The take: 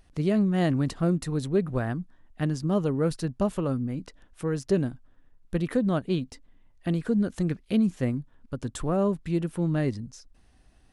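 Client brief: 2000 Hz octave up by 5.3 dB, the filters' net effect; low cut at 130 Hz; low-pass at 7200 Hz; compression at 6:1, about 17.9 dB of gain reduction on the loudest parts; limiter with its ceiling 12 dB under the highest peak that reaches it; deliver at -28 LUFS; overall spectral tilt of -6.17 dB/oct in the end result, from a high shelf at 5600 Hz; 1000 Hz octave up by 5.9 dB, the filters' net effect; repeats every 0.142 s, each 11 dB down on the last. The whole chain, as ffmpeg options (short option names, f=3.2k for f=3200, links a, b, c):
-af "highpass=130,lowpass=7.2k,equalizer=f=1k:t=o:g=7,equalizer=f=2k:t=o:g=3.5,highshelf=f=5.6k:g=6.5,acompressor=threshold=-39dB:ratio=6,alimiter=level_in=10dB:limit=-24dB:level=0:latency=1,volume=-10dB,aecho=1:1:142|284|426:0.282|0.0789|0.0221,volume=16.5dB"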